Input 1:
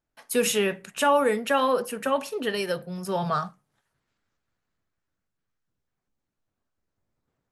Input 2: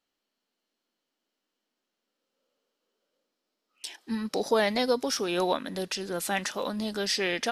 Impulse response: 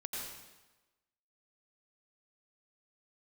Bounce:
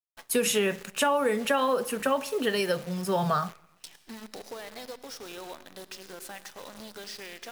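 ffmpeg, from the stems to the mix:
-filter_complex "[0:a]volume=1.5dB,asplit=2[link_01][link_02];[link_02]volume=-24dB[link_03];[1:a]highpass=frequency=360:poles=1,acompressor=threshold=-41dB:ratio=3,volume=-4dB,asplit=2[link_04][link_05];[link_05]volume=-7.5dB[link_06];[2:a]atrim=start_sample=2205[link_07];[link_03][link_06]amix=inputs=2:normalize=0[link_08];[link_08][link_07]afir=irnorm=-1:irlink=0[link_09];[link_01][link_04][link_09]amix=inputs=3:normalize=0,acrusher=bits=8:dc=4:mix=0:aa=0.000001,acompressor=threshold=-21dB:ratio=6"

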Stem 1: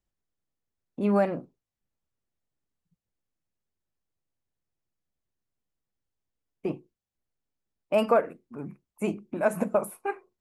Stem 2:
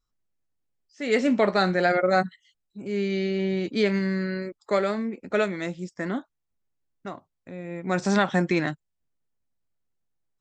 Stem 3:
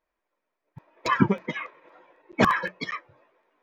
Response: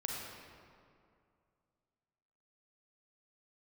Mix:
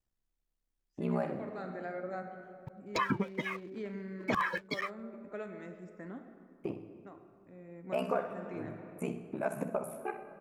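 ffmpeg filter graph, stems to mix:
-filter_complex "[0:a]aeval=exprs='val(0)*sin(2*PI*33*n/s)':channel_layout=same,volume=-2dB,asplit=4[link_01][link_02][link_03][link_04];[link_02]volume=-11.5dB[link_05];[link_03]volume=-10.5dB[link_06];[1:a]equalizer=frequency=4500:width_type=o:width=1.5:gain=-14.5,volume=-18.5dB,asplit=2[link_07][link_08];[link_08]volume=-4.5dB[link_09];[2:a]alimiter=limit=-13dB:level=0:latency=1:release=121,aeval=exprs='sgn(val(0))*max(abs(val(0))-0.00251,0)':channel_layout=same,adelay=1900,volume=1.5dB[link_10];[link_04]apad=whole_len=458993[link_11];[link_07][link_11]sidechaincompress=threshold=-31dB:ratio=8:attack=16:release=998[link_12];[3:a]atrim=start_sample=2205[link_13];[link_05][link_09]amix=inputs=2:normalize=0[link_14];[link_14][link_13]afir=irnorm=-1:irlink=0[link_15];[link_06]aecho=0:1:64|128|192|256|320|384:1|0.4|0.16|0.064|0.0256|0.0102[link_16];[link_01][link_12][link_10][link_15][link_16]amix=inputs=5:normalize=0,acompressor=threshold=-41dB:ratio=1.5"

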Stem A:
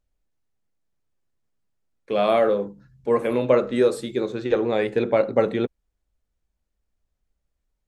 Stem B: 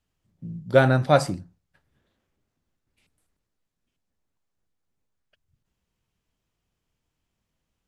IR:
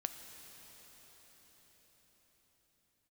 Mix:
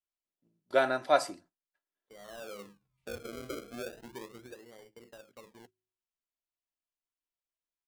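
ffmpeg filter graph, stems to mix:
-filter_complex "[0:a]acrusher=samples=33:mix=1:aa=0.000001:lfo=1:lforange=33:lforate=0.36,bandreject=frequency=53.12:width_type=h:width=4,bandreject=frequency=106.24:width_type=h:width=4,bandreject=frequency=159.36:width_type=h:width=4,bandreject=frequency=212.48:width_type=h:width=4,bandreject=frequency=265.6:width_type=h:width=4,bandreject=frequency=318.72:width_type=h:width=4,bandreject=frequency=371.84:width_type=h:width=4,acompressor=threshold=-34dB:ratio=2,volume=-12dB,afade=type=in:start_time=2.19:duration=0.47:silence=0.281838,afade=type=out:start_time=4.16:duration=0.49:silence=0.281838[link_01];[1:a]highpass=460,aecho=1:1:3:0.47,volume=-6dB[link_02];[link_01][link_02]amix=inputs=2:normalize=0,agate=range=-14dB:threshold=-57dB:ratio=16:detection=peak"

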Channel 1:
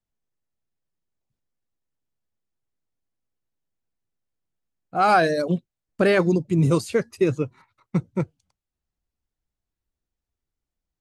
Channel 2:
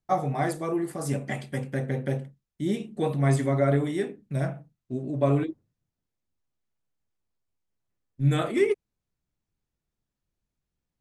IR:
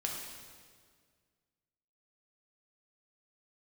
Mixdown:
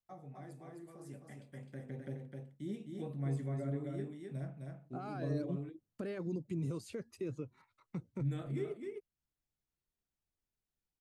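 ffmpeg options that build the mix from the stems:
-filter_complex "[0:a]alimiter=limit=-19dB:level=0:latency=1:release=123,lowshelf=frequency=250:gain=-6,volume=-7.5dB[link_01];[1:a]volume=-13.5dB,afade=type=in:start_time=1.4:duration=0.7:silence=0.398107,asplit=2[link_02][link_03];[link_03]volume=-5dB,aecho=0:1:259:1[link_04];[link_01][link_02][link_04]amix=inputs=3:normalize=0,acrossover=split=400[link_05][link_06];[link_06]acompressor=threshold=-58dB:ratio=2[link_07];[link_05][link_07]amix=inputs=2:normalize=0"

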